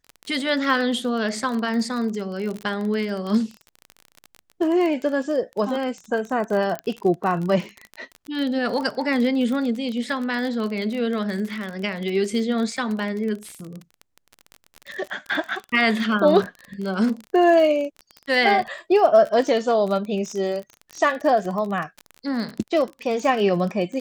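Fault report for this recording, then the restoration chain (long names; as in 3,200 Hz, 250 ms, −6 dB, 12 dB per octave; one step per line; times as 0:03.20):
surface crackle 32 per second −27 dBFS
0:06.79: click −15 dBFS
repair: click removal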